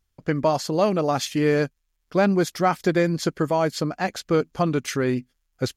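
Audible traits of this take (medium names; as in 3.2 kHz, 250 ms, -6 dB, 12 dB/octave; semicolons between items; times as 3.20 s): noise floor -74 dBFS; spectral tilt -5.5 dB/octave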